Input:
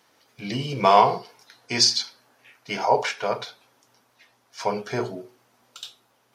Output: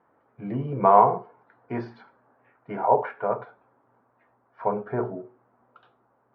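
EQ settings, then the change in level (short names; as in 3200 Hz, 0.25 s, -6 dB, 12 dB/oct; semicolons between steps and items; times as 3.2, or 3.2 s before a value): LPF 1400 Hz 24 dB/oct; 0.0 dB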